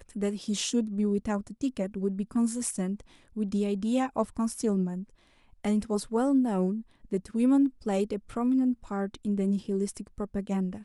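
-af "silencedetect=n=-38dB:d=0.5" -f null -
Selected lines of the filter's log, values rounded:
silence_start: 5.03
silence_end: 5.64 | silence_duration: 0.61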